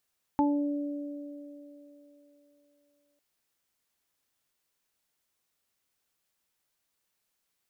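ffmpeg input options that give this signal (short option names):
-f lavfi -i "aevalsrc='0.0794*pow(10,-3*t/3)*sin(2*PI*289*t)+0.02*pow(10,-3*t/4.2)*sin(2*PI*578*t)+0.075*pow(10,-3*t/0.36)*sin(2*PI*867*t)':d=2.8:s=44100"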